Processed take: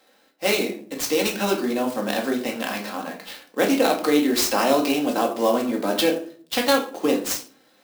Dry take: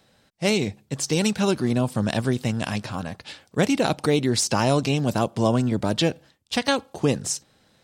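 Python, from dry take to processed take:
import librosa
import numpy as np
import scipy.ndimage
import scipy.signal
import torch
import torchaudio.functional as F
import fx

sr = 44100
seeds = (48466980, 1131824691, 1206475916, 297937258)

y = scipy.signal.sosfilt(scipy.signal.butter(4, 290.0, 'highpass', fs=sr, output='sos'), x)
y = fx.room_shoebox(y, sr, seeds[0], volume_m3=410.0, walls='furnished', distance_m=2.1)
y = fx.clock_jitter(y, sr, seeds[1], jitter_ms=0.023)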